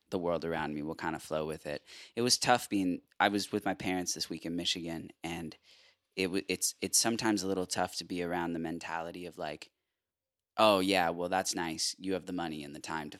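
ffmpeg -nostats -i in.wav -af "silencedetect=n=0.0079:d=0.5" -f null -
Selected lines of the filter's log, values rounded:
silence_start: 5.53
silence_end: 6.17 | silence_duration: 0.64
silence_start: 9.63
silence_end: 10.57 | silence_duration: 0.94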